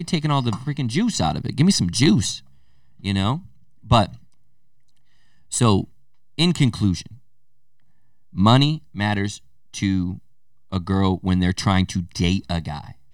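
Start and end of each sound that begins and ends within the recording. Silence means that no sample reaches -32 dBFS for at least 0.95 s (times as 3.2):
5.52–7.13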